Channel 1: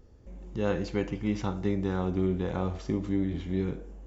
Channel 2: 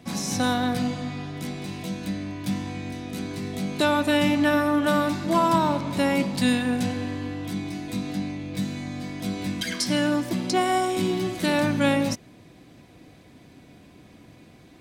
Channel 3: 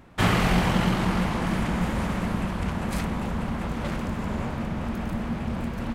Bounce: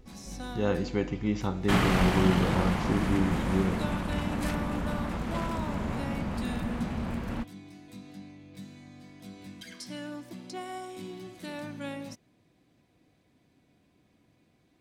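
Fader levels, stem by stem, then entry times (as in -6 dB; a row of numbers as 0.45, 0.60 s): +0.5, -16.5, -3.5 dB; 0.00, 0.00, 1.50 s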